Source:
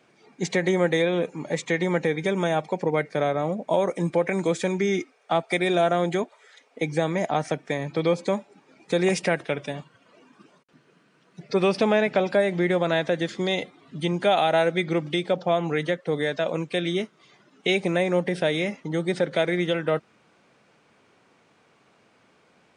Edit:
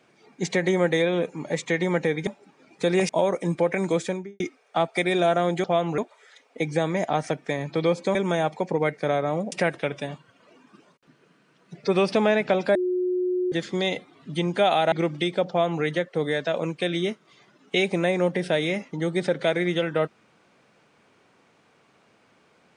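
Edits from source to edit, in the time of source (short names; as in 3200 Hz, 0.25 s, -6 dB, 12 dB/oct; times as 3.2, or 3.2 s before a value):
2.27–3.64 swap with 8.36–9.18
4.52–4.95 studio fade out
12.41–13.18 bleep 363 Hz -21.5 dBFS
14.58–14.84 cut
15.41–15.75 copy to 6.19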